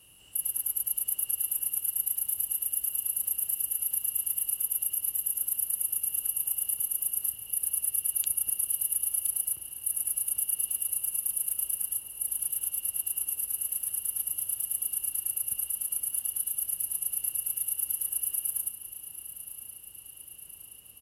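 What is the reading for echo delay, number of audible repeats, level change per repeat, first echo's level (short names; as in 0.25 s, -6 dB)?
1.022 s, 3, -4.5 dB, -12.5 dB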